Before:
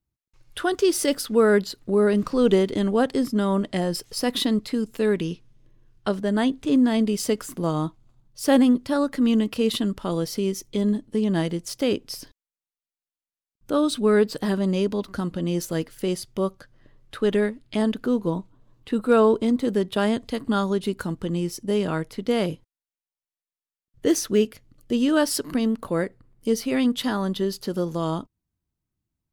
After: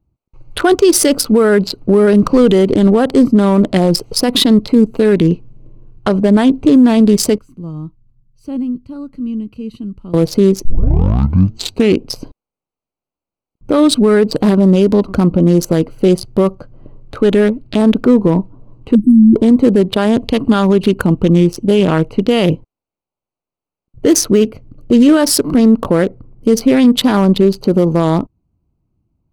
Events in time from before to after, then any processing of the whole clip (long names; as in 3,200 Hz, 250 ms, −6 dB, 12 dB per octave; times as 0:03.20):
0:07.38–0:10.14: guitar amp tone stack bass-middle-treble 6-0-2
0:10.65: tape start 1.39 s
0:18.95–0:19.36: linear-phase brick-wall band-stop 360–8,000 Hz
0:20.18–0:22.52: parametric band 2,800 Hz +10.5 dB 0.21 octaves
whole clip: adaptive Wiener filter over 25 samples; boost into a limiter +19 dB; level −1 dB